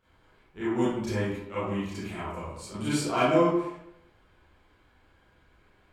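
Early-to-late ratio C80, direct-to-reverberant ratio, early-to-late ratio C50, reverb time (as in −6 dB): 2.0 dB, −12.0 dB, −2.5 dB, 0.80 s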